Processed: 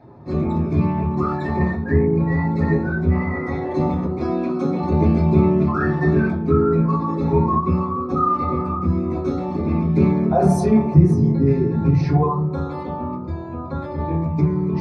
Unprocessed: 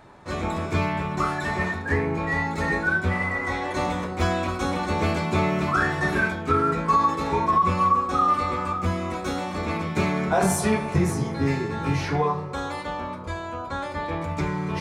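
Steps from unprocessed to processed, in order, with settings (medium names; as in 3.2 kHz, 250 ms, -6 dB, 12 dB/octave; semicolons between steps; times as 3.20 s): resonances exaggerated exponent 1.5; 4.19–4.79 s: high-pass 250 Hz -> 120 Hz 24 dB/octave; reverberation RT60 0.30 s, pre-delay 3 ms, DRR -1.5 dB; trim -7.5 dB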